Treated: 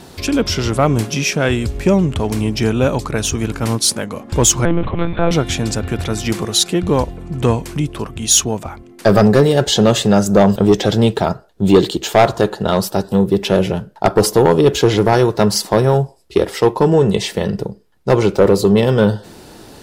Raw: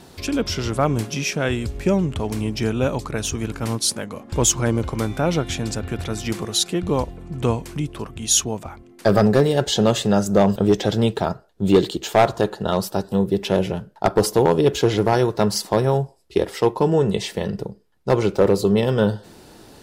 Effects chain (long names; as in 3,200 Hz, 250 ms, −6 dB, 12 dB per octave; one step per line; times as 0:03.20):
soft clipping −8 dBFS, distortion −20 dB
0:04.65–0:05.31: one-pitch LPC vocoder at 8 kHz 170 Hz
level +6.5 dB